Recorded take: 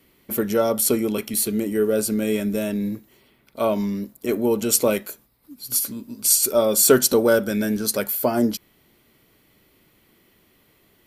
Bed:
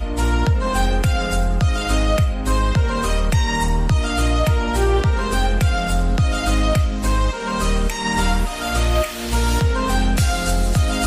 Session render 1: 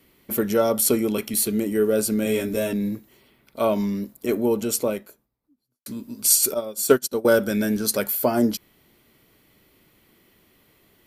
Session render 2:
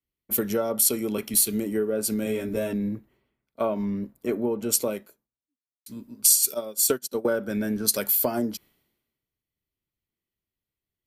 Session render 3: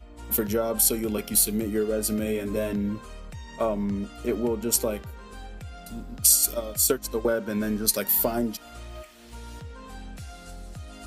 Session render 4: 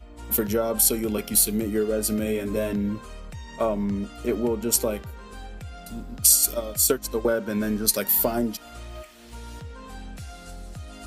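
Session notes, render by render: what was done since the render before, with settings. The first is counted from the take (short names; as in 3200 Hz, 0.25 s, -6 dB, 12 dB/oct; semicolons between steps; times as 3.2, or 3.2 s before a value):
2.24–2.73 doubler 17 ms -3 dB; 4.15–5.86 studio fade out; 6.54–7.25 upward expander 2.5:1, over -29 dBFS
compressor 16:1, threshold -23 dBFS, peak gain reduction 14.5 dB; three-band expander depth 100%
add bed -23 dB
gain +1.5 dB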